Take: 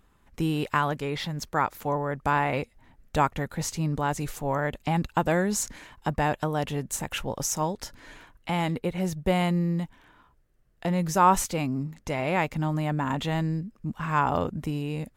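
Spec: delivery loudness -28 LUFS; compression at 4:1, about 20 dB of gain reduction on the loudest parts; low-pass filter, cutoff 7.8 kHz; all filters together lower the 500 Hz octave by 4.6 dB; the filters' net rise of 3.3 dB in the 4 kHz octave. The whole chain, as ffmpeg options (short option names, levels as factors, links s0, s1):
-af "lowpass=7800,equalizer=f=500:t=o:g=-6,equalizer=f=4000:t=o:g=5,acompressor=threshold=0.01:ratio=4,volume=5.01"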